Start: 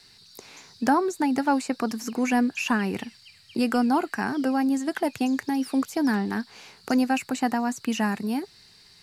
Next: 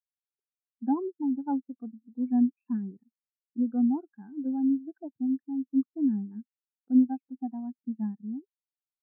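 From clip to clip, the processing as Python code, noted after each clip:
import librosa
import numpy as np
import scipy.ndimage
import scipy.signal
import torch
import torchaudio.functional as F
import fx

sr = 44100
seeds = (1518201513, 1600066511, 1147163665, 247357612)

y = scipy.signal.sosfilt(scipy.signal.butter(4, 1900.0, 'lowpass', fs=sr, output='sos'), x)
y = fx.low_shelf(y, sr, hz=340.0, db=4.0)
y = fx.spectral_expand(y, sr, expansion=2.5)
y = y * librosa.db_to_amplitude(-3.5)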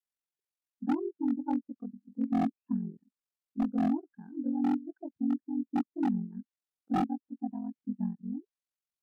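y = x * np.sin(2.0 * np.pi * 22.0 * np.arange(len(x)) / sr)
y = fx.env_lowpass_down(y, sr, base_hz=820.0, full_db=-28.0)
y = 10.0 ** (-23.0 / 20.0) * (np.abs((y / 10.0 ** (-23.0 / 20.0) + 3.0) % 4.0 - 2.0) - 1.0)
y = y * librosa.db_to_amplitude(1.5)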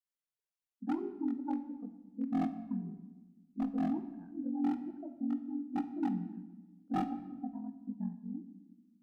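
y = fx.room_shoebox(x, sr, seeds[0], volume_m3=840.0, walls='mixed', distance_m=0.54)
y = y * librosa.db_to_amplitude(-5.0)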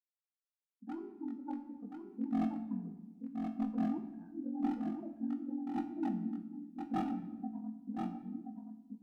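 y = fx.fade_in_head(x, sr, length_s=1.98)
y = fx.comb_fb(y, sr, f0_hz=110.0, decay_s=0.41, harmonics='all', damping=0.0, mix_pct=70)
y = y + 10.0 ** (-5.5 / 20.0) * np.pad(y, (int(1027 * sr / 1000.0), 0))[:len(y)]
y = y * librosa.db_to_amplitude(5.5)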